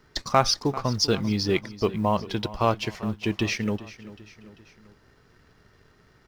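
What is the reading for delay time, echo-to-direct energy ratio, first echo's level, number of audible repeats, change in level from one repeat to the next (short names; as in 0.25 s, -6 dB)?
0.392 s, -15.5 dB, -17.0 dB, 3, -5.5 dB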